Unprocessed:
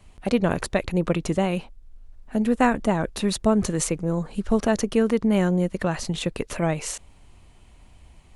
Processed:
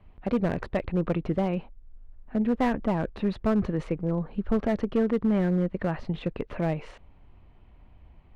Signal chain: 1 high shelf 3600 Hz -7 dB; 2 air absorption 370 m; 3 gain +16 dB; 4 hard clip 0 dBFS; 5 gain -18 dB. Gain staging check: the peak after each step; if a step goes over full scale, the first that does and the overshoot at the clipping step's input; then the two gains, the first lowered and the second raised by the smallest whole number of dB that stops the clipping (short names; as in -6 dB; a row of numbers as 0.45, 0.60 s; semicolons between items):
-6.5, -7.5, +8.5, 0.0, -18.0 dBFS; step 3, 8.5 dB; step 3 +7 dB, step 5 -9 dB